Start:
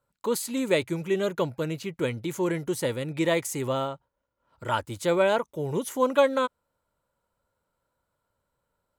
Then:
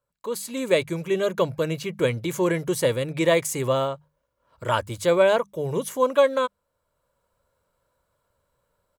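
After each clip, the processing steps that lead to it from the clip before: hum notches 50/100/150/200 Hz; comb 1.8 ms, depth 33%; level rider gain up to 10.5 dB; trim -5 dB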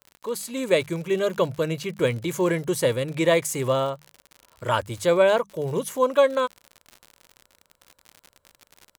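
crackle 72 per s -32 dBFS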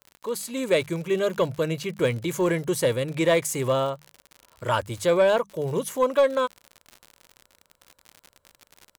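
saturation -10 dBFS, distortion -21 dB

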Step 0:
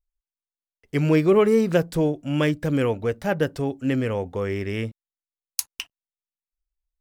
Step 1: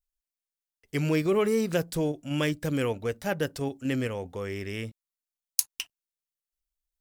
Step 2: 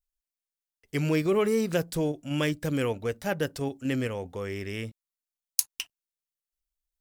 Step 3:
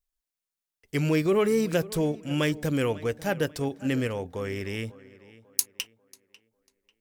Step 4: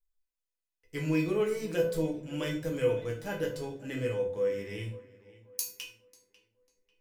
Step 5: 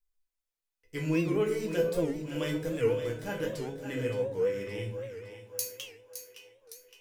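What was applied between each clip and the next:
treble shelf 3.2 kHz +10.5 dB; in parallel at -1 dB: level held to a coarse grid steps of 12 dB; on the sum: trim -10 dB
no audible change
in parallel at -8 dB: saturation -18.5 dBFS, distortion -16 dB; on the sum: tape echo 544 ms, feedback 39%, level -18.5 dB, low-pass 3.5 kHz; trim -1 dB
feedback comb 500 Hz, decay 0.29 s, harmonics all, mix 80%; reverberation RT60 0.45 s, pre-delay 6 ms, DRR -0.5 dB; trim +1 dB
on a send: two-band feedback delay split 450 Hz, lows 185 ms, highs 564 ms, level -10 dB; on the sum: warped record 78 rpm, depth 160 cents

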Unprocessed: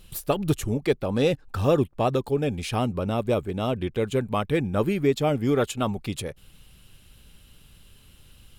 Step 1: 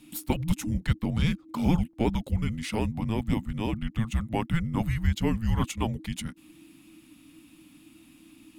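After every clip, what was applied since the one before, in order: frequency shift -330 Hz; trim -2.5 dB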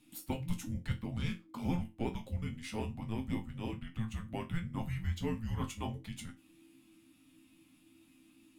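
chord resonator F2 major, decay 0.24 s; trim +1 dB

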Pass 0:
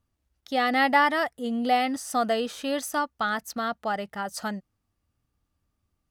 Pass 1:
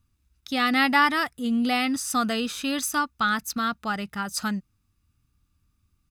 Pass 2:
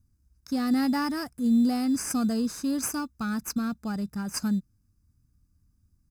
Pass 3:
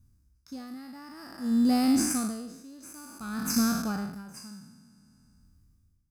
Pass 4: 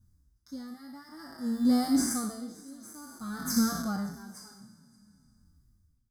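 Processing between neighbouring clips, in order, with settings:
peaking EQ 620 Hz -10.5 dB 1.7 oct; comb 0.8 ms, depth 34%; trim +6 dB
FFT filter 230 Hz 0 dB, 3.4 kHz -25 dB, 5 kHz -3 dB; in parallel at -12 dB: sample-rate reducer 3.8 kHz, jitter 0%; on the sum: peaking EQ 1.6 kHz +6 dB 0.2 oct; trim +1 dB
spectral sustain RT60 1.22 s; logarithmic tremolo 0.54 Hz, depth 23 dB; trim +2 dB
Butterworth band-stop 2.6 kHz, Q 2.4; delay 571 ms -23.5 dB; endless flanger 5.9 ms -2.8 Hz; trim +1 dB

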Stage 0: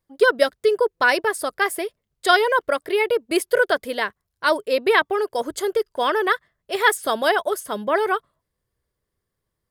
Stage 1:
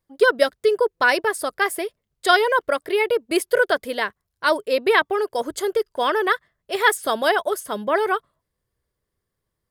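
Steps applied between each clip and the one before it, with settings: no audible change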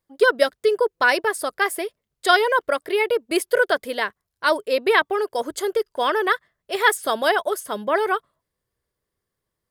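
bass shelf 150 Hz -6 dB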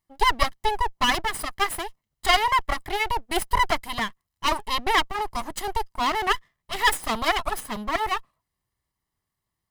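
comb filter that takes the minimum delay 0.99 ms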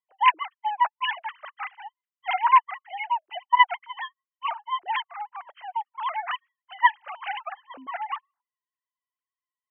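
formants replaced by sine waves; trim -2 dB

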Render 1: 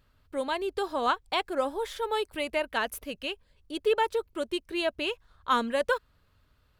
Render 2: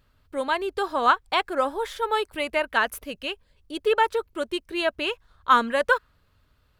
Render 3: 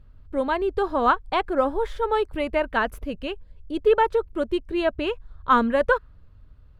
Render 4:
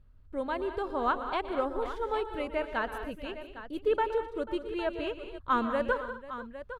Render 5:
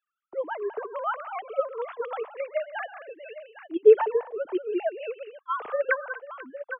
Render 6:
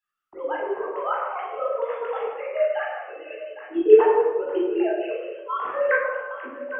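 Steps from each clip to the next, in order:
dynamic bell 1.4 kHz, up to +7 dB, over -41 dBFS, Q 0.99; trim +2 dB
tilt EQ -3.5 dB/octave
multi-tap echo 119/157/192/244/490/807 ms -14.5/-18/-12/-18.5/-17/-13 dB; trim -9 dB
formants replaced by sine waves; trim +4.5 dB
reverberation RT60 0.90 s, pre-delay 15 ms, DRR -4.5 dB; trim -3.5 dB

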